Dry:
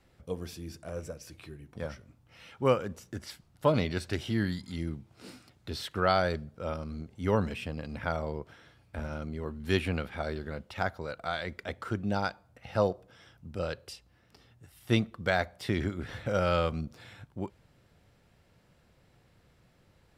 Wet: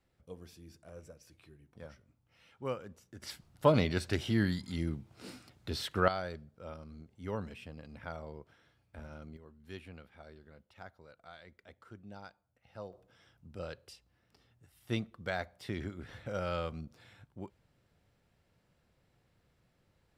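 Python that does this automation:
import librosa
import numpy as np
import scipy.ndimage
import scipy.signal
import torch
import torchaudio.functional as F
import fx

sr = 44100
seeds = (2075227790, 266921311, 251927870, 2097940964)

y = fx.gain(x, sr, db=fx.steps((0.0, -12.0), (3.22, 0.0), (6.08, -11.0), (9.37, -19.0), (12.93, -8.5)))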